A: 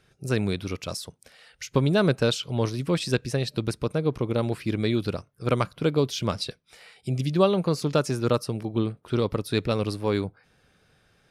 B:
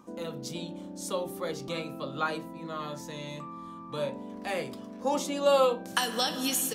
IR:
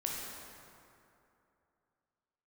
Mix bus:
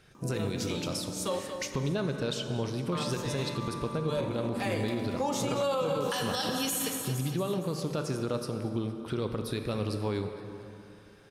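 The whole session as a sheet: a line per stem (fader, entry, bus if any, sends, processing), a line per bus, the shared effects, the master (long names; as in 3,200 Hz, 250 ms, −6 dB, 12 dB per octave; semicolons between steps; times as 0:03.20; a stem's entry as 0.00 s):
−0.5 dB, 0.00 s, send −4.5 dB, echo send −15.5 dB, downward compressor 2.5 to 1, threshold −36 dBFS, peak gain reduction 14.5 dB
−1.5 dB, 0.15 s, muted 0:01.39–0:02.92, send −6 dB, echo send −8 dB, no processing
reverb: on, RT60 2.8 s, pre-delay 12 ms
echo: repeating echo 231 ms, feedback 53%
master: brickwall limiter −21.5 dBFS, peak gain reduction 11.5 dB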